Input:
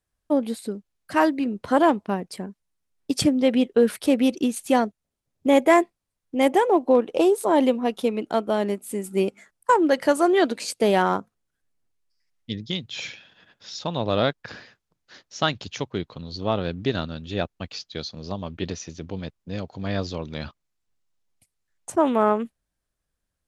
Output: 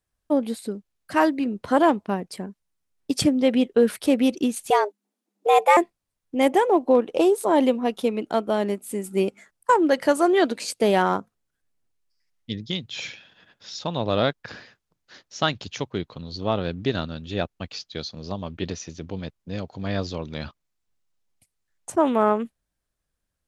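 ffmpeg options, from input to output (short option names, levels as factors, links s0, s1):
-filter_complex "[0:a]asettb=1/sr,asplit=3[s0][s1][s2];[s0]atrim=end=4.704[s3];[s1]atrim=start=4.7:end=5.77,asetpts=PTS-STARTPTS,afade=t=in:d=0.004:c=qsin,afade=t=out:st=1.066:d=0.004:c=qsin,afreqshift=200[s4];[s2]atrim=start=5.766[s5];[s3][s4]acrossfade=d=0.004:c1=hsin:c2=qsin[s6];[s6][s5]acrossfade=d=0.004:c1=qsin:c2=hsin"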